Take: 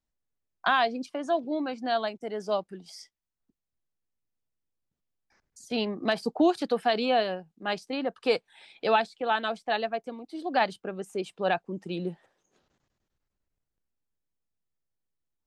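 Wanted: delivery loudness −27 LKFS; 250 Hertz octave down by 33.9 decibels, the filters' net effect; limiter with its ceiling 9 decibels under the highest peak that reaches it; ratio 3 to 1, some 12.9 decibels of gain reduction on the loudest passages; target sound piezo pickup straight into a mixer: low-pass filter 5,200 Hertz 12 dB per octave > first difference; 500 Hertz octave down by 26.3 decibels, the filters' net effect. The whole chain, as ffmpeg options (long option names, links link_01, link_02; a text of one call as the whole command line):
ffmpeg -i in.wav -af "equalizer=frequency=250:width_type=o:gain=-6,equalizer=frequency=500:width_type=o:gain=-5.5,acompressor=threshold=-39dB:ratio=3,alimiter=level_in=6dB:limit=-24dB:level=0:latency=1,volume=-6dB,lowpass=5200,aderivative,volume=29.5dB" out.wav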